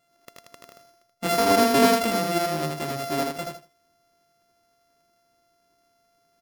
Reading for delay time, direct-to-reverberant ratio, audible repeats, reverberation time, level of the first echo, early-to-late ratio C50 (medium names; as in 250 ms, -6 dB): 80 ms, no reverb, 3, no reverb, -3.5 dB, no reverb